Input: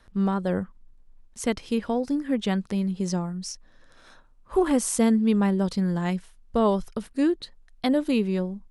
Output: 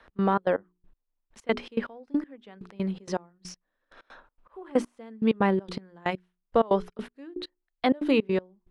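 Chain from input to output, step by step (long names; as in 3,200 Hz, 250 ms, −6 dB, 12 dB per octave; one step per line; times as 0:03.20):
de-essing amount 60%
three-way crossover with the lows and the highs turned down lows −13 dB, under 280 Hz, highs −19 dB, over 3,500 Hz
mains-hum notches 60/120/180/240/300/360/420 Hz
in parallel at +0.5 dB: brickwall limiter −19.5 dBFS, peak gain reduction 6.5 dB
on the sum: gate pattern "x.xx.x...x...." 161 BPM −24 dB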